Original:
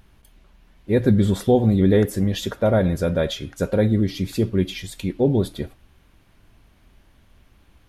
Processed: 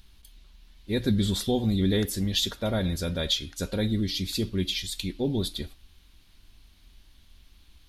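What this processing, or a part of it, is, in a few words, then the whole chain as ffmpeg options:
smiley-face EQ: -af "equalizer=frequency=125:width_type=o:width=1:gain=-8,equalizer=frequency=500:width_type=o:width=1:gain=-5,equalizer=frequency=1000:width_type=o:width=1:gain=5,equalizer=frequency=4000:width_type=o:width=1:gain=11,lowshelf=frequency=93:gain=7,equalizer=frequency=1000:width_type=o:width=1.8:gain=-8,highshelf=frequency=5500:gain=7,volume=-4.5dB"

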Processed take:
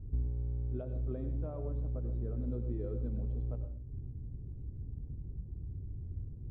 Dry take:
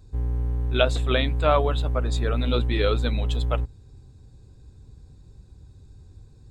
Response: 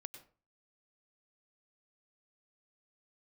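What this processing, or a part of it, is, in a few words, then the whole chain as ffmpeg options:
television next door: -filter_complex "[0:a]acompressor=threshold=-39dB:ratio=3,lowpass=300[link_01];[1:a]atrim=start_sample=2205[link_02];[link_01][link_02]afir=irnorm=-1:irlink=0,volume=10.5dB"

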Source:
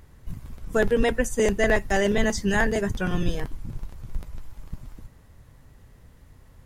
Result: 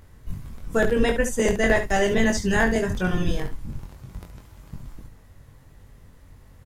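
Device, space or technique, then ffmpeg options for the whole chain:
slapback doubling: -filter_complex "[0:a]asettb=1/sr,asplit=3[link_01][link_02][link_03];[link_01]atrim=end=3.804[link_04];[link_02]atrim=start=3.8:end=4.75,asetpts=PTS-STARTPTS,afade=type=in:duration=0.004:curve=qsin,afade=type=out:start_time=0.946:duration=0.004:curve=qsin,highpass=59[link_05];[link_03]atrim=start=4.746[link_06];[link_04][link_05]acrossfade=duration=0.004:curve1=hsin:curve2=qsin[link_07];[link_07][link_06]acrossfade=duration=0.004:curve1=qsin:curve2=hsin,asplit=3[link_08][link_09][link_10];[link_09]adelay=22,volume=-4dB[link_11];[link_10]adelay=71,volume=-9.5dB[link_12];[link_08][link_11][link_12]amix=inputs=3:normalize=0"

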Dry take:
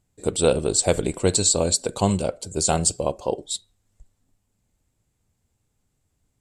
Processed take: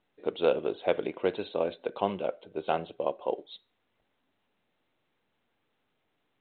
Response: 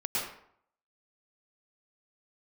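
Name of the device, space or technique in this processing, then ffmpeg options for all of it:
telephone: -af "highpass=340,lowpass=3400,volume=-4.5dB" -ar 8000 -c:a pcm_mulaw

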